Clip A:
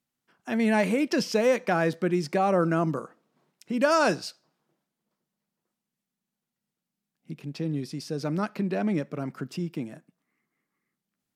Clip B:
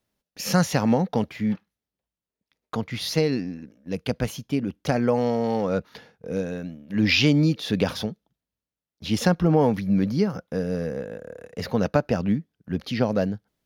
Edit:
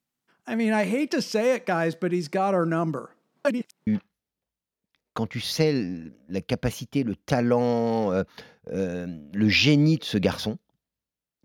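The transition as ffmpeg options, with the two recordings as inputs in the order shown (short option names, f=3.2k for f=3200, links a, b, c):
-filter_complex "[0:a]apad=whole_dur=11.44,atrim=end=11.44,asplit=2[a][b];[a]atrim=end=3.452[c];[b]atrim=start=3.448:end=3.872,asetpts=PTS-STARTPTS,areverse[d];[1:a]atrim=start=1.438:end=9.01[e];[c][d]acrossfade=d=0.004:c1=hsin:c2=hsin[f];[f][e]acrossfade=d=0.004:c1=hsin:c2=hsin"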